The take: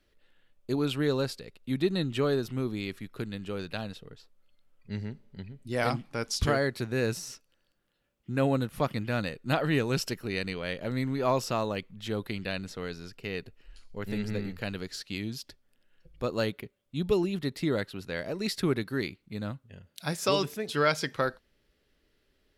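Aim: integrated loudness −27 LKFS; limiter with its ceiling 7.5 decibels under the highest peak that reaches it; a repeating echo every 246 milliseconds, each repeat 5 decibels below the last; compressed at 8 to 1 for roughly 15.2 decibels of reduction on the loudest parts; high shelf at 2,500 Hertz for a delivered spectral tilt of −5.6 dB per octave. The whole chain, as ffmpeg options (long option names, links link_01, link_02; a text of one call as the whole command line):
ffmpeg -i in.wav -af "highshelf=frequency=2500:gain=-7.5,acompressor=threshold=-37dB:ratio=8,alimiter=level_in=8dB:limit=-24dB:level=0:latency=1,volume=-8dB,aecho=1:1:246|492|738|984|1230|1476|1722:0.562|0.315|0.176|0.0988|0.0553|0.031|0.0173,volume=15.5dB" out.wav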